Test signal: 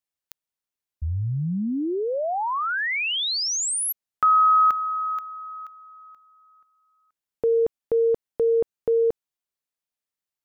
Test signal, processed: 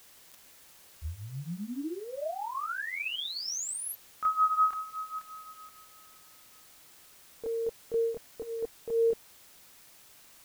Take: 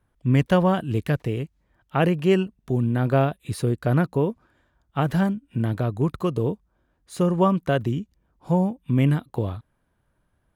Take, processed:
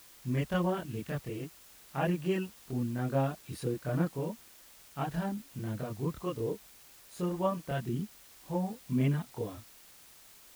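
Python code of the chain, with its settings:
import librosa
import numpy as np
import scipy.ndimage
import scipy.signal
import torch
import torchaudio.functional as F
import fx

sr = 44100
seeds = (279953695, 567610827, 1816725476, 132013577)

y = fx.chorus_voices(x, sr, voices=6, hz=0.23, base_ms=26, depth_ms=3.4, mix_pct=60)
y = fx.quant_dither(y, sr, seeds[0], bits=8, dither='triangular')
y = y * librosa.db_to_amplitude(-8.0)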